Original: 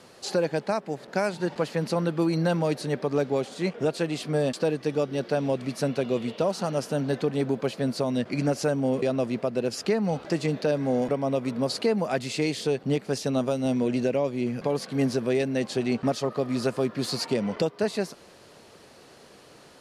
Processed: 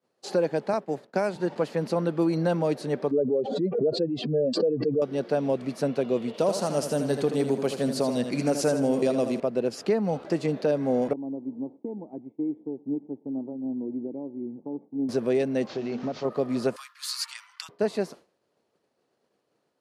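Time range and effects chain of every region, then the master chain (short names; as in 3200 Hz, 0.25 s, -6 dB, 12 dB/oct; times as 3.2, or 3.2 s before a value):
0.73–1.36 expander -38 dBFS + three-band squash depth 40%
3.11–5.02 spectral contrast raised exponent 2.3 + air absorption 59 m + backwards sustainer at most 47 dB/s
6.34–9.4 bell 9900 Hz +12 dB 2 oct + feedback echo 80 ms, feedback 44%, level -8.5 dB
11.13–15.09 vocal tract filter u + echo 0.118 s -23 dB
15.67–16.25 delta modulation 32 kbps, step -37.5 dBFS + notches 50/100/150/200/250/300/350 Hz + compressor 2.5:1, threshold -28 dBFS
16.76–17.69 steep high-pass 1100 Hz 48 dB/oct + high shelf 4800 Hz +11 dB
whole clip: expander -37 dBFS; HPF 370 Hz 6 dB/oct; tilt shelf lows +6 dB, about 870 Hz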